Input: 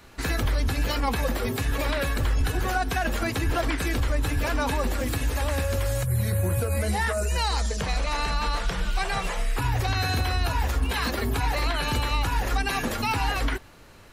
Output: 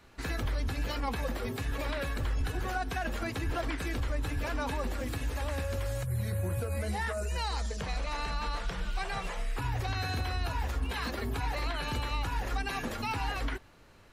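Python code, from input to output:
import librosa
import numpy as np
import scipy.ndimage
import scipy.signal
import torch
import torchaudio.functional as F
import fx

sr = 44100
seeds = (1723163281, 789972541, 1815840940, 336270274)

y = fx.high_shelf(x, sr, hz=7100.0, db=-6.0)
y = y * 10.0 ** (-7.5 / 20.0)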